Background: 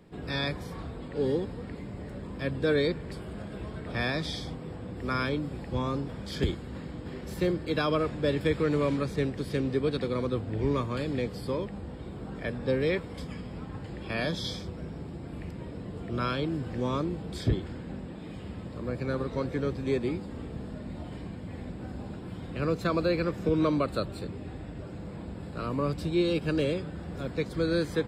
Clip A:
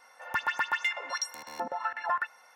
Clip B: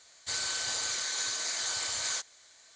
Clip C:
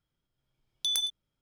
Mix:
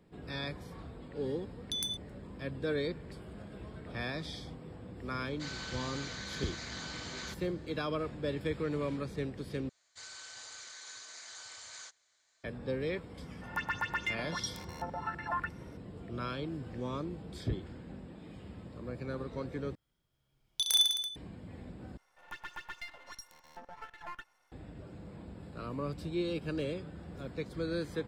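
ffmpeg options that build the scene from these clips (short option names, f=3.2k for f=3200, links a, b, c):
-filter_complex "[3:a]asplit=2[a][b];[2:a]asplit=2[c][d];[1:a]asplit=2[e][f];[0:a]volume=-8dB[g];[c]lowpass=3.6k[h];[d]equalizer=f=1.5k:t=o:w=1.9:g=3.5[i];[b]aecho=1:1:30|64.5|104.2|149.8|202.3|262.6|332:0.794|0.631|0.501|0.398|0.316|0.251|0.2[j];[f]aeval=exprs='if(lt(val(0),0),0.251*val(0),val(0))':c=same[k];[g]asplit=4[l][m][n][o];[l]atrim=end=9.694[p];[i]atrim=end=2.75,asetpts=PTS-STARTPTS,volume=-16.5dB[q];[m]atrim=start=12.436:end=19.754[r];[j]atrim=end=1.41,asetpts=PTS-STARTPTS,volume=-1dB[s];[n]atrim=start=21.156:end=21.974[t];[k]atrim=end=2.55,asetpts=PTS-STARTPTS,volume=-12dB[u];[o]atrim=start=24.516[v];[a]atrim=end=1.41,asetpts=PTS-STARTPTS,volume=-7dB,afade=t=in:d=0.004:c=hsin,afade=t=out:st=1.406:d=0.004:c=hsin,adelay=870[w];[h]atrim=end=2.75,asetpts=PTS-STARTPTS,volume=-5.5dB,afade=t=in:d=0.004:c=hsin,afade=t=out:st=2.746:d=0.004:c=hsin,adelay=226233S[x];[e]atrim=end=2.55,asetpts=PTS-STARTPTS,volume=-5.5dB,afade=t=in:d=0.004:c=hsin,afade=t=out:st=2.546:d=0.004:c=hsin,adelay=13220[y];[p][q]acrossfade=d=0.004:c1=hsin:c2=hsin[z];[z][r]acrossfade=d=0.004:c1=hsin:c2=hsin[aa];[aa][s]acrossfade=d=0.004:c1=hsin:c2=hsin[ab];[ab][t]acrossfade=d=0.004:c1=hsin:c2=hsin[ac];[ac][u]acrossfade=d=0.004:c1=hsin:c2=hsin[ad];[ad][v]acrossfade=d=0.004:c1=hsin:c2=hsin[ae];[ae][w][x][y]amix=inputs=4:normalize=0"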